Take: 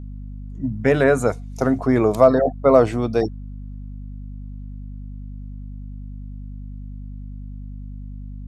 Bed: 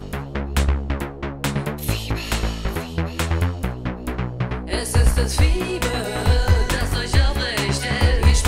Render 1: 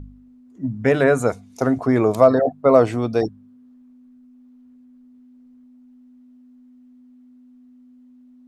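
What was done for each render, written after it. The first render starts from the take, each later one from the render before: de-hum 50 Hz, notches 4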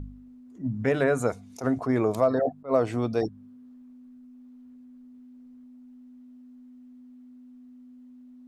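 compression 2:1, threshold -25 dBFS, peak gain reduction 10 dB; attacks held to a fixed rise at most 250 dB/s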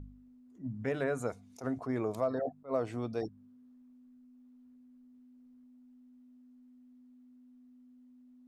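trim -9.5 dB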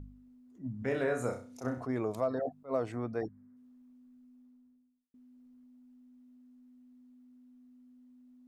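0.79–1.85 s: flutter echo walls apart 5.5 m, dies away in 0.38 s; 2.92–3.57 s: resonant high shelf 2.4 kHz -7.5 dB, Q 3; 4.27–5.14 s: studio fade out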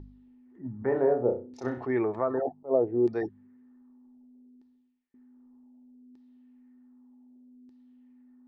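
LFO low-pass saw down 0.65 Hz 360–4800 Hz; small resonant body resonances 370/850/1800 Hz, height 12 dB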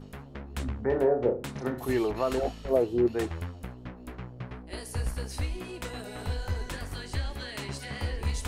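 add bed -15.5 dB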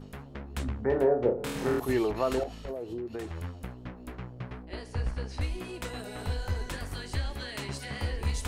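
1.35–1.80 s: flutter echo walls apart 4.3 m, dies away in 1 s; 2.43–3.44 s: compression 16:1, threshold -32 dBFS; 4.65–5.41 s: distance through air 120 m

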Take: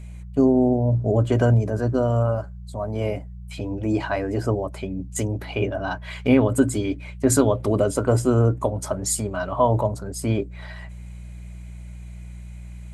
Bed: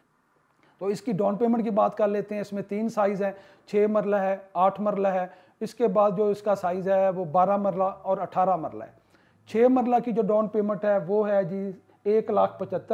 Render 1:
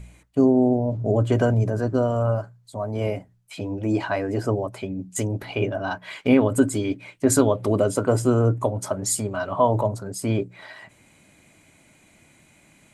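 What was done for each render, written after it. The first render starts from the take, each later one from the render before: de-hum 60 Hz, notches 3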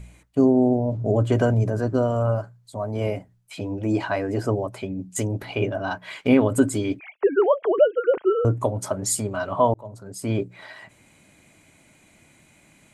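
6.99–8.45 s: formants replaced by sine waves; 9.74–10.42 s: fade in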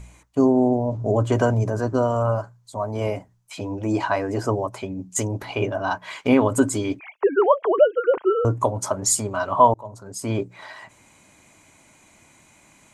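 fifteen-band graphic EQ 160 Hz -3 dB, 1 kHz +8 dB, 6.3 kHz +7 dB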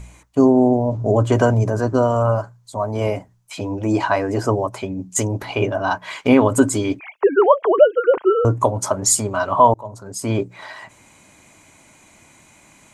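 trim +4 dB; peak limiter -1 dBFS, peak gain reduction 2.5 dB

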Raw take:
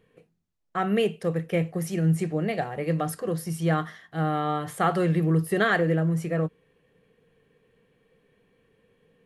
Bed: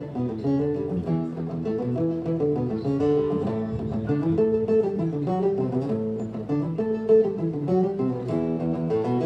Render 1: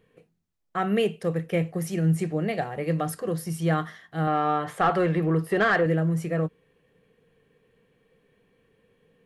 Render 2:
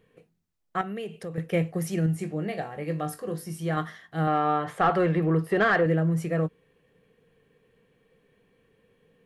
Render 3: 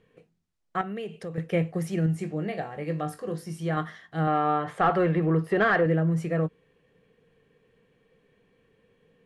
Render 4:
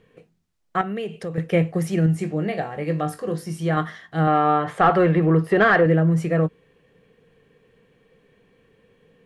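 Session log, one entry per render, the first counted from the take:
4.27–5.86 s: overdrive pedal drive 13 dB, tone 1.5 kHz, clips at -11 dBFS
0.81–1.38 s: compression 3:1, threshold -35 dBFS; 2.06–3.77 s: feedback comb 50 Hz, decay 0.21 s, mix 80%; 4.38–6.18 s: treble shelf 4.8 kHz -5.5 dB
low-pass 8.4 kHz 12 dB/octave; dynamic bell 5.8 kHz, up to -5 dB, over -49 dBFS, Q 0.97
trim +6 dB

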